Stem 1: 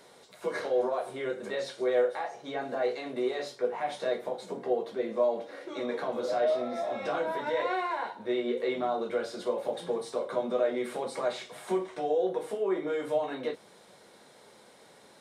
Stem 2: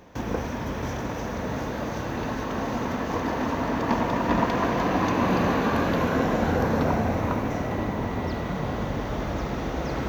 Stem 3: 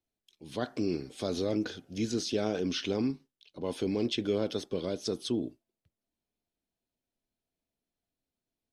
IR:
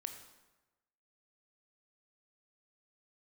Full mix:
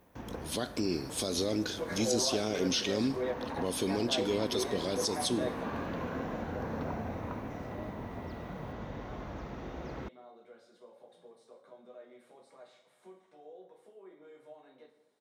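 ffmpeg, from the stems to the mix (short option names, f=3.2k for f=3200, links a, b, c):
-filter_complex "[0:a]adelay=1350,volume=-7dB,asplit=2[a][b];[b]volume=-15dB[c];[1:a]highshelf=f=5.9k:g=-8.5,volume=-13dB[d];[2:a]aemphasis=mode=production:type=75fm,volume=1dB,asplit=3[e][f][g];[f]volume=-7dB[h];[g]apad=whole_len=730159[i];[a][i]sidechaingate=range=-33dB:threshold=-55dB:ratio=16:detection=peak[j];[d][e]amix=inputs=2:normalize=0,alimiter=level_in=0.5dB:limit=-24dB:level=0:latency=1:release=313,volume=-0.5dB,volume=0dB[k];[3:a]atrim=start_sample=2205[l];[c][h]amix=inputs=2:normalize=0[m];[m][l]afir=irnorm=-1:irlink=0[n];[j][k][n]amix=inputs=3:normalize=0"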